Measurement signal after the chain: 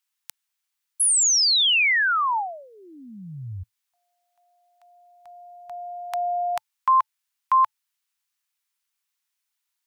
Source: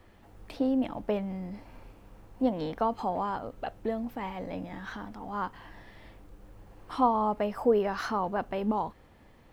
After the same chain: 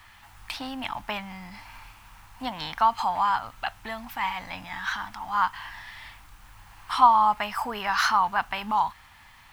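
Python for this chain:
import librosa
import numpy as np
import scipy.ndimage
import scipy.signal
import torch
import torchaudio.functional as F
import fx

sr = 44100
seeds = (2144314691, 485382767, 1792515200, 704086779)

y = fx.curve_eq(x, sr, hz=(110.0, 490.0, 880.0, 2400.0), db=(0, -17, 10, 14))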